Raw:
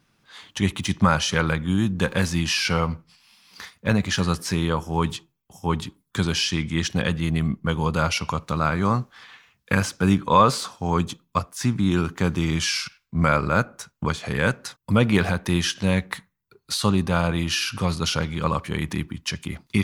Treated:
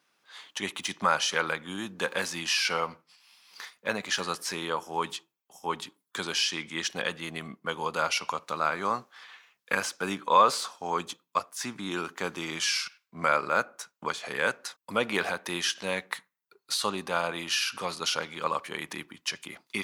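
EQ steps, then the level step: HPF 460 Hz 12 dB/oct; -3.0 dB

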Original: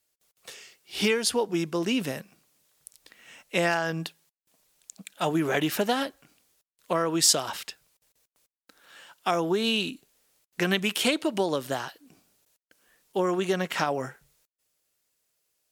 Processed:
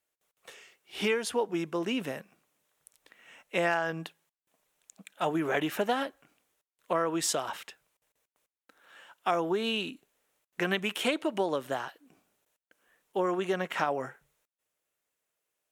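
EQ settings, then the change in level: low shelf 280 Hz -9.5 dB; high shelf 3400 Hz -10 dB; bell 4700 Hz -7 dB 0.5 oct; 0.0 dB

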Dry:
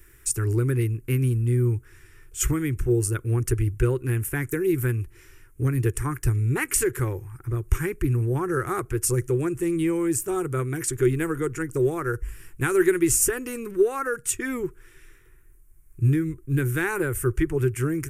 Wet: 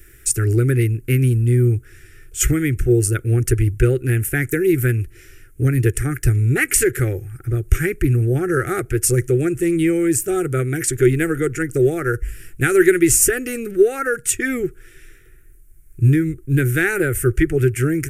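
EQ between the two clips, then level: dynamic EQ 2000 Hz, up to +4 dB, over -45 dBFS, Q 2.2; Butterworth band-stop 1000 Hz, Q 1.8; +6.5 dB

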